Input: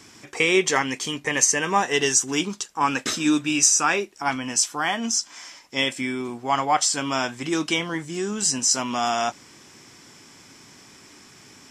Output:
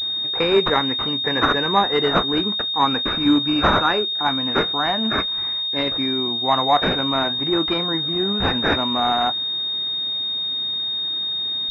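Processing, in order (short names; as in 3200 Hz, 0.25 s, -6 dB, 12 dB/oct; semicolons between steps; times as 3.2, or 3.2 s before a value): vibrato 0.56 Hz 73 cents; pulse-width modulation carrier 3700 Hz; gain +3.5 dB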